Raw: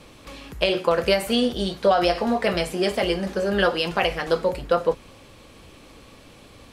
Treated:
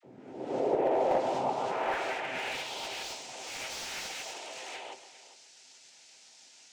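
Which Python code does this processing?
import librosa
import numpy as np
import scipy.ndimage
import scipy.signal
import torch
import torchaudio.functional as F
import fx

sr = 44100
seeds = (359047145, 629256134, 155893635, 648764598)

p1 = fx.spec_swells(x, sr, rise_s=0.82)
p2 = fx.peak_eq(p1, sr, hz=400.0, db=5.5, octaves=0.52)
p3 = fx.over_compress(p2, sr, threshold_db=-22.0, ratio=-1.0)
p4 = p2 + F.gain(torch.from_numpy(p3), -3.0).numpy()
p5 = 10.0 ** (-9.5 / 20.0) * np.tanh(p4 / 10.0 ** (-9.5 / 20.0))
p6 = fx.noise_vocoder(p5, sr, seeds[0], bands=4)
p7 = fx.notch(p6, sr, hz=1100.0, q=5.1)
p8 = fx.comb_fb(p7, sr, f0_hz=130.0, decay_s=0.19, harmonics='all', damping=0.0, mix_pct=60)
p9 = fx.dispersion(p8, sr, late='lows', ms=42.0, hz=610.0)
p10 = p9 + fx.echo_single(p9, sr, ms=405, db=-15.5, dry=0)
p11 = fx.filter_sweep_bandpass(p10, sr, from_hz=300.0, to_hz=5400.0, start_s=0.34, end_s=3.25, q=1.4)
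p12 = p11 + 10.0 ** (-13.5 / 20.0) * np.pad(p11, (int(130 * sr / 1000.0), 0))[:len(p11)]
p13 = fx.slew_limit(p12, sr, full_power_hz=73.0)
y = F.gain(torch.from_numpy(p13), -2.5).numpy()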